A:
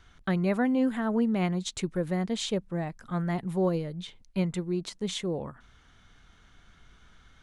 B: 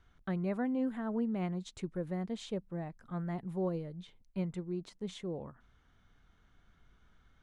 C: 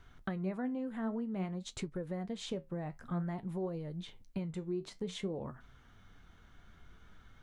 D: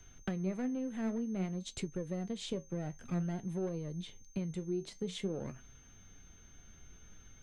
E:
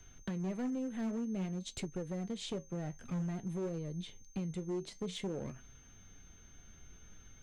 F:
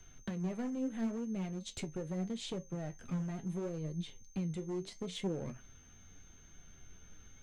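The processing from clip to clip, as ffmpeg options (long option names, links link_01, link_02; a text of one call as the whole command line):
ffmpeg -i in.wav -af "highshelf=frequency=2000:gain=-9,volume=-7.5dB" out.wav
ffmpeg -i in.wav -af "acompressor=threshold=-42dB:ratio=6,flanger=delay=7:depth=7.2:regen=65:speed=0.53:shape=triangular,volume=11.5dB" out.wav
ffmpeg -i in.wav -filter_complex "[0:a]acrossover=split=130|830|1500[link_01][link_02][link_03][link_04];[link_03]aeval=exprs='abs(val(0))':channel_layout=same[link_05];[link_01][link_02][link_05][link_04]amix=inputs=4:normalize=0,aeval=exprs='val(0)+0.000794*sin(2*PI*6300*n/s)':channel_layout=same,volume=1dB" out.wav
ffmpeg -i in.wav -af "asoftclip=type=hard:threshold=-32.5dB" out.wav
ffmpeg -i in.wav -af "flanger=delay=5.1:depth=8.8:regen=59:speed=0.76:shape=triangular,volume=4dB" out.wav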